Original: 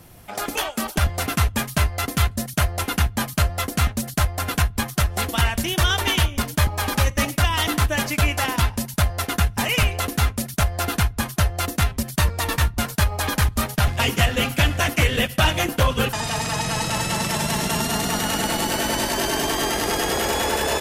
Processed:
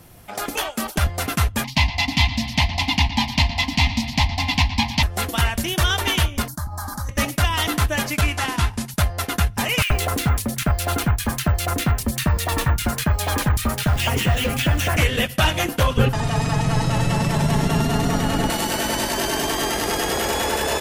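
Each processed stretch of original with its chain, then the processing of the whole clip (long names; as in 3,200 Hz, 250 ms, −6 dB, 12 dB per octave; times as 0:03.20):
0:01.64–0:05.03: drawn EQ curve 190 Hz 0 dB, 270 Hz +7 dB, 420 Hz −26 dB, 910 Hz +12 dB, 1,400 Hz −22 dB, 2,000 Hz +8 dB, 4,800 Hz +9 dB, 9,300 Hz −14 dB + bucket-brigade delay 115 ms, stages 4,096, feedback 73%, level −13.5 dB
0:06.48–0:07.09: flat-topped bell 2,600 Hz −10 dB 1.1 octaves + downward compressor 4 to 1, threshold −24 dBFS + phaser with its sweep stopped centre 1,100 Hz, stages 4
0:08.21–0:08.91: variable-slope delta modulation 64 kbit/s + parametric band 560 Hz −7 dB 0.39 octaves
0:09.82–0:14.97: multiband delay without the direct sound highs, lows 80 ms, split 2,000 Hz + bad sample-rate conversion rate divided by 2×, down none, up hold + multiband upward and downward compressor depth 100%
0:15.97–0:18.50: spectral tilt −2.5 dB per octave + comb filter 7.2 ms, depth 38%
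whole clip: no processing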